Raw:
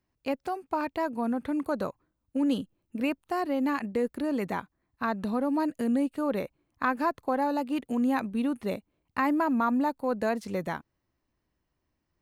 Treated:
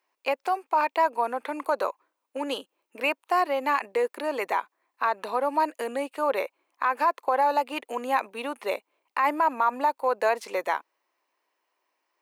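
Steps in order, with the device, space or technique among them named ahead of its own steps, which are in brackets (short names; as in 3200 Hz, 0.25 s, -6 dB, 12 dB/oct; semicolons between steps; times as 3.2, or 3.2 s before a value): laptop speaker (HPF 430 Hz 24 dB/oct; bell 980 Hz +6.5 dB 0.54 oct; bell 2400 Hz +5.5 dB 0.57 oct; limiter -18.5 dBFS, peak gain reduction 8.5 dB); gain +5 dB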